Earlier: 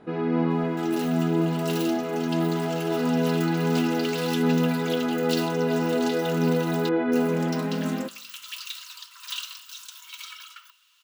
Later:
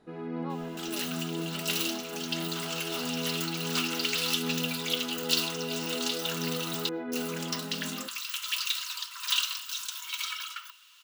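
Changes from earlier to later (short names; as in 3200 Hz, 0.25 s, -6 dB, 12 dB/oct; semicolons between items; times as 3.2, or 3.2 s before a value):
first sound -11.5 dB; second sound +6.0 dB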